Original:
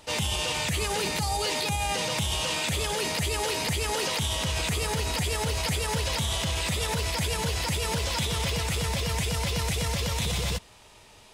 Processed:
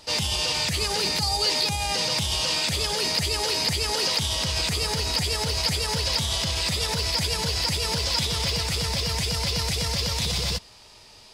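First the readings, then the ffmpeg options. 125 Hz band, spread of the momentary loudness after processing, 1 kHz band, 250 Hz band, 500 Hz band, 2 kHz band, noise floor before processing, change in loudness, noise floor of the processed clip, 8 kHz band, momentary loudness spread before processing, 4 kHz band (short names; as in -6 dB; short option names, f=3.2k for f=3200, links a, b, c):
0.0 dB, 2 LU, 0.0 dB, 0.0 dB, 0.0 dB, +0.5 dB, -53 dBFS, +4.0 dB, -50 dBFS, +2.5 dB, 1 LU, +6.5 dB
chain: -af "equalizer=f=4.8k:w=2.7:g=12"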